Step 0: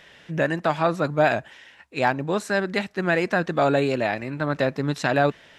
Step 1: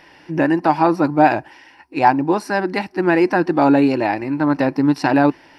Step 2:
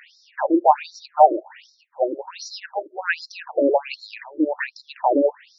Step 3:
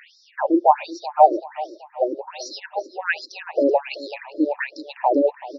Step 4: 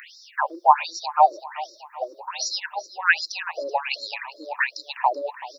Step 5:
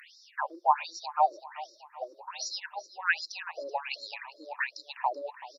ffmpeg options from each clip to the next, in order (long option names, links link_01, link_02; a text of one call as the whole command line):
ffmpeg -i in.wav -af "superequalizer=6b=3.55:9b=2.82:13b=0.447:14b=1.58:15b=0.316,volume=2dB" out.wav
ffmpeg -i in.wav -af "crystalizer=i=0.5:c=0,afftfilt=real='re*between(b*sr/1024,410*pow(5300/410,0.5+0.5*sin(2*PI*1.3*pts/sr))/1.41,410*pow(5300/410,0.5+0.5*sin(2*PI*1.3*pts/sr))*1.41)':imag='im*between(b*sr/1024,410*pow(5300/410,0.5+0.5*sin(2*PI*1.3*pts/sr))/1.41,410*pow(5300/410,0.5+0.5*sin(2*PI*1.3*pts/sr))*1.41)':win_size=1024:overlap=0.75,volume=3dB" out.wav
ffmpeg -i in.wav -af "aecho=1:1:381|762|1143|1524:0.141|0.0692|0.0339|0.0166" out.wav
ffmpeg -i in.wav -af "crystalizer=i=3.5:c=0,highpass=frequency=1100:width_type=q:width=2.7,volume=-2dB" out.wav
ffmpeg -i in.wav -af "aresample=32000,aresample=44100,volume=-8.5dB" out.wav